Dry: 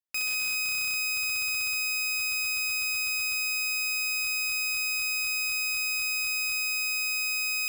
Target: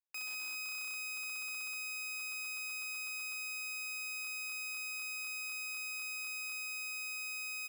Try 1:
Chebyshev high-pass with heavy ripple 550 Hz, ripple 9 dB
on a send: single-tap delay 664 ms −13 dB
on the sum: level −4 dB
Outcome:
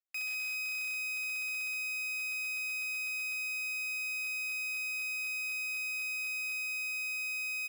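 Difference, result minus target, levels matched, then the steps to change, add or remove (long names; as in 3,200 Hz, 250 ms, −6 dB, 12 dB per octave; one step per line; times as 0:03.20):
500 Hz band −8.5 dB
change: Chebyshev high-pass with heavy ripple 230 Hz, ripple 9 dB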